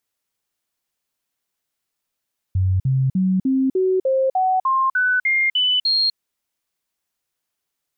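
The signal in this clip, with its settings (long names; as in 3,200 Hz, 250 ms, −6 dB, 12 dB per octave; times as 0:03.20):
stepped sweep 93.6 Hz up, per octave 2, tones 12, 0.25 s, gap 0.05 s −15 dBFS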